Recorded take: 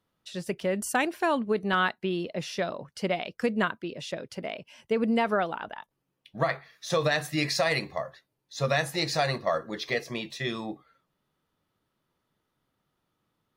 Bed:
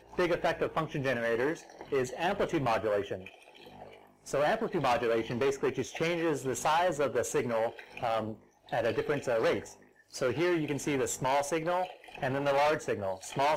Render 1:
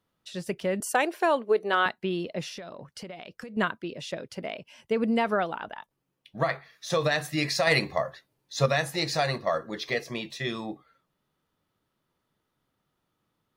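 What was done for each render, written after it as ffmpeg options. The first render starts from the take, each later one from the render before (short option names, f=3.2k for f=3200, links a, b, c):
-filter_complex "[0:a]asettb=1/sr,asplit=3[a][b][c];[a]atrim=end=0.804[d];[b]atrim=start=0.8:end=1.86,asetpts=PTS-STARTPTS,afade=t=in:d=0.004:c=qsin,afade=t=out:st=1.056:d=0.004:c=qsin,highpass=f=440:t=q:w=1.7[e];[c]atrim=start=1.856[f];[d][e]acrossfade=d=0.004:c1=hsin:c2=qsin[g];[g][f]acrossfade=d=0.004:c1=qsin:c2=hsin,asettb=1/sr,asplit=3[h][i][j];[h]atrim=end=2.484[k];[i]atrim=start=2.48:end=3.57,asetpts=PTS-STARTPTS,afade=t=in:d=0.004:c=qsin,afade=t=out:st=1.086:d=0.004:c=qsin,acompressor=threshold=-36dB:ratio=16:attack=3.2:release=140:knee=1:detection=peak[l];[j]atrim=start=3.566[m];[k][l]acrossfade=d=0.004:c1=hsin:c2=qsin[n];[n][m]acrossfade=d=0.004:c1=qsin:c2=hsin,asettb=1/sr,asplit=3[o][p][q];[o]atrim=end=7.674[r];[p]atrim=start=7.67:end=8.66,asetpts=PTS-STARTPTS,afade=t=in:d=0.004:c=qsin,afade=t=out:st=0.986:d=0.004:c=qsin,acontrast=23[s];[q]atrim=start=8.656[t];[r][s]acrossfade=d=0.004:c1=hsin:c2=qsin[u];[u][t]acrossfade=d=0.004:c1=qsin:c2=hsin"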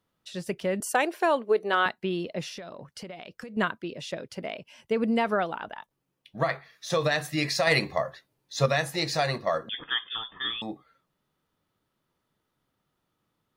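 -filter_complex "[0:a]asettb=1/sr,asplit=3[a][b][c];[a]atrim=end=9.694[d];[b]atrim=start=9.69:end=10.62,asetpts=PTS-STARTPTS,afade=t=in:d=0.004:c=qsin,afade=t=out:st=0.926:d=0.004:c=qsin,lowpass=f=3.1k:t=q:w=0.5098,lowpass=f=3.1k:t=q:w=0.6013,lowpass=f=3.1k:t=q:w=0.9,lowpass=f=3.1k:t=q:w=2.563,afreqshift=-3700[e];[c]atrim=start=10.616[f];[d][e]acrossfade=d=0.004:c1=hsin:c2=qsin[g];[g][f]acrossfade=d=0.004:c1=qsin:c2=hsin"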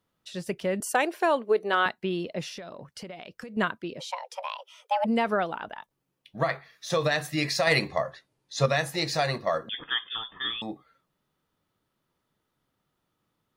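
-filter_complex "[0:a]asplit=3[a][b][c];[a]afade=t=out:st=3.99:d=0.02[d];[b]afreqshift=380,afade=t=in:st=3.99:d=0.02,afade=t=out:st=5.04:d=0.02[e];[c]afade=t=in:st=5.04:d=0.02[f];[d][e][f]amix=inputs=3:normalize=0,asettb=1/sr,asplit=3[g][h][i];[g]atrim=end=7.884[j];[h]atrim=start=7.88:end=8.73,asetpts=PTS-STARTPTS,afade=t=in:d=0.004:c=qsin,afade=t=out:st=0.846:d=0.004:c=qsin,lowpass=f=11k:w=0.5412,lowpass=f=11k:w=1.3066[k];[i]atrim=start=8.726[l];[j][k]acrossfade=d=0.004:c1=hsin:c2=qsin[m];[m][l]acrossfade=d=0.004:c1=qsin:c2=hsin"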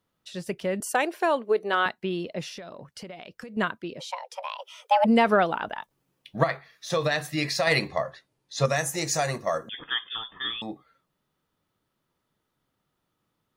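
-filter_complex "[0:a]asettb=1/sr,asplit=3[a][b][c];[a]atrim=end=4.594[d];[b]atrim=start=4.59:end=6.44,asetpts=PTS-STARTPTS,afade=t=in:d=0.004:c=qsin,afade=t=out:st=1.846:d=0.004:c=qsin,acontrast=42[e];[c]atrim=start=6.436[f];[d][e]acrossfade=d=0.004:c1=hsin:c2=qsin[g];[g][f]acrossfade=d=0.004:c1=qsin:c2=hsin,asettb=1/sr,asplit=3[h][i][j];[h]atrim=end=8.654[k];[i]atrim=start=8.65:end=9.78,asetpts=PTS-STARTPTS,afade=t=in:d=0.004:c=qsin,afade=t=out:st=1.126:d=0.004:c=qsin,highshelf=f=5.3k:t=q:w=3:g=7[l];[j]atrim=start=9.776[m];[k][l]acrossfade=d=0.004:c1=hsin:c2=qsin[n];[n][m]acrossfade=d=0.004:c1=qsin:c2=hsin"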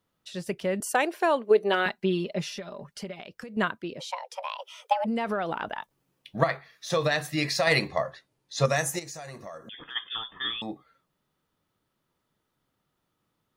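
-filter_complex "[0:a]asettb=1/sr,asplit=3[a][b][c];[a]atrim=end=1.504[d];[b]atrim=start=1.5:end=3.22,asetpts=PTS-STARTPTS,afade=t=in:d=0.004:c=qsin,afade=t=out:st=1.716:d=0.004:c=qsin,aecho=1:1:5:0.74,atrim=end_sample=75852[e];[c]atrim=start=3.216[f];[d][e]acrossfade=d=0.004:c1=hsin:c2=qsin[g];[g][f]acrossfade=d=0.004:c1=qsin:c2=hsin,asplit=3[h][i][j];[h]afade=t=out:st=4.92:d=0.02[k];[i]acompressor=threshold=-25dB:ratio=6:attack=3.2:release=140:knee=1:detection=peak,afade=t=in:st=4.92:d=0.02,afade=t=out:st=6.41:d=0.02[l];[j]afade=t=in:st=6.41:d=0.02[m];[k][l][m]amix=inputs=3:normalize=0,asplit=3[n][o][p];[n]afade=t=out:st=8.98:d=0.02[q];[o]acompressor=threshold=-40dB:ratio=4:attack=3.2:release=140:knee=1:detection=peak,afade=t=in:st=8.98:d=0.02,afade=t=out:st=9.95:d=0.02[r];[p]afade=t=in:st=9.95:d=0.02[s];[q][r][s]amix=inputs=3:normalize=0"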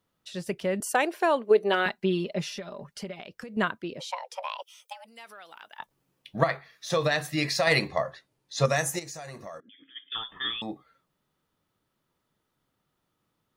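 -filter_complex "[0:a]asettb=1/sr,asplit=3[a][b][c];[a]atrim=end=4.624[d];[b]atrim=start=4.62:end=5.79,asetpts=PTS-STARTPTS,afade=t=in:d=0.004:c=qsin,afade=t=out:st=1.166:d=0.004:c=qsin,aderivative[e];[c]atrim=start=5.786[f];[d][e]acrossfade=d=0.004:c1=hsin:c2=qsin[g];[g][f]acrossfade=d=0.004:c1=qsin:c2=hsin,asettb=1/sr,asplit=3[h][i][j];[h]atrim=end=9.604[k];[i]atrim=start=9.6:end=10.12,asetpts=PTS-STARTPTS,afade=t=in:d=0.004:c=qsin,afade=t=out:st=0.516:d=0.004:c=qsin,asplit=3[l][m][n];[l]bandpass=f=270:t=q:w=8,volume=0dB[o];[m]bandpass=f=2.29k:t=q:w=8,volume=-6dB[p];[n]bandpass=f=3.01k:t=q:w=8,volume=-9dB[q];[o][p][q]amix=inputs=3:normalize=0[r];[j]atrim=start=10.116[s];[k][r]acrossfade=d=0.004:c1=hsin:c2=qsin[t];[t][s]acrossfade=d=0.004:c1=qsin:c2=hsin"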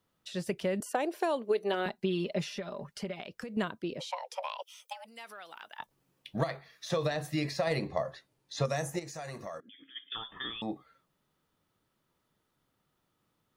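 -filter_complex "[0:a]acrossover=split=860|3100[a][b][c];[a]acompressor=threshold=-28dB:ratio=4[d];[b]acompressor=threshold=-43dB:ratio=4[e];[c]acompressor=threshold=-45dB:ratio=4[f];[d][e][f]amix=inputs=3:normalize=0"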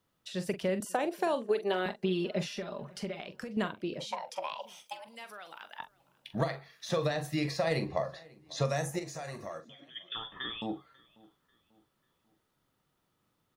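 -filter_complex "[0:a]asplit=2[a][b];[b]adelay=43,volume=-11dB[c];[a][c]amix=inputs=2:normalize=0,asplit=2[d][e];[e]adelay=542,lowpass=f=3.8k:p=1,volume=-24dB,asplit=2[f][g];[g]adelay=542,lowpass=f=3.8k:p=1,volume=0.42,asplit=2[h][i];[i]adelay=542,lowpass=f=3.8k:p=1,volume=0.42[j];[d][f][h][j]amix=inputs=4:normalize=0"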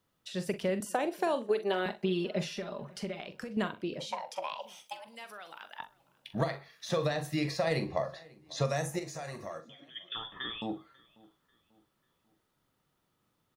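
-af "aecho=1:1:62|124:0.106|0.0286"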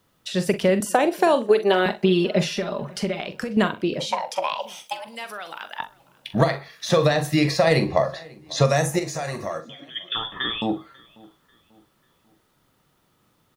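-af "volume=12dB"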